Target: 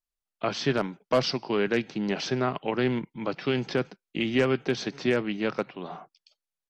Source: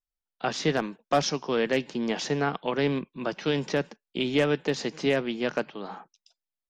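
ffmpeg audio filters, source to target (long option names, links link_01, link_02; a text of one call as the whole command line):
ffmpeg -i in.wav -af "aresample=32000,aresample=44100,asetrate=39289,aresample=44100,atempo=1.12246" out.wav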